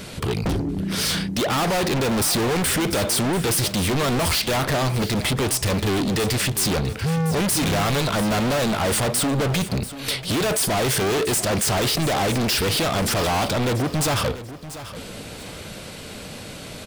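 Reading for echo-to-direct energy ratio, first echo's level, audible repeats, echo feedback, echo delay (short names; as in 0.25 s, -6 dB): -13.5 dB, -14.0 dB, 2, 28%, 0.688 s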